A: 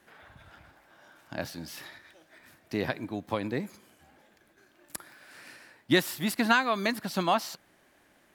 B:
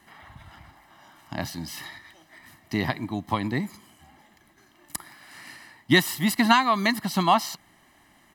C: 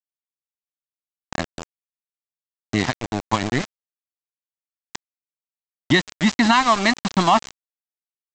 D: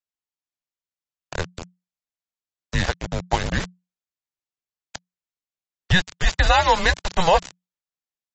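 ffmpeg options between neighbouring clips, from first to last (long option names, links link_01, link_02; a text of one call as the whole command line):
ffmpeg -i in.wav -af "aecho=1:1:1:0.69,volume=4dB" out.wav
ffmpeg -i in.wav -af "aresample=16000,aeval=exprs='val(0)*gte(abs(val(0)),0.0531)':channel_layout=same,aresample=44100,alimiter=level_in=10dB:limit=-1dB:release=50:level=0:latency=1,volume=-4.5dB" out.wav
ffmpeg -i in.wav -af "afreqshift=-180" -ar 32000 -c:a libmp3lame -b:a 32k out.mp3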